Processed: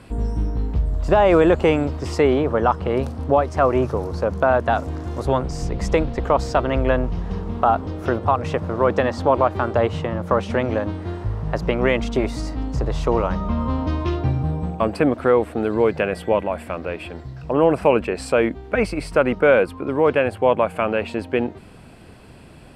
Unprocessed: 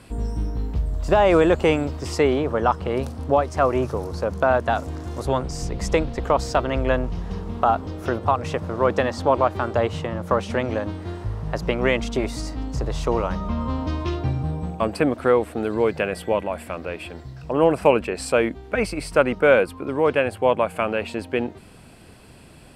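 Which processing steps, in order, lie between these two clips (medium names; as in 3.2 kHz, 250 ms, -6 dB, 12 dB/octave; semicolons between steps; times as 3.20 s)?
treble shelf 4.1 kHz -8.5 dB; in parallel at +3 dB: peak limiter -10 dBFS, peak gain reduction 7 dB; on the sum: trim -4.5 dB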